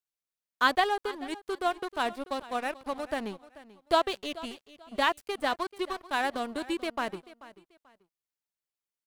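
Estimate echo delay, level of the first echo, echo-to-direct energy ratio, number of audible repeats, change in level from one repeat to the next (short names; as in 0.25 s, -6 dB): 0.437 s, -18.0 dB, -17.5 dB, 2, -11.5 dB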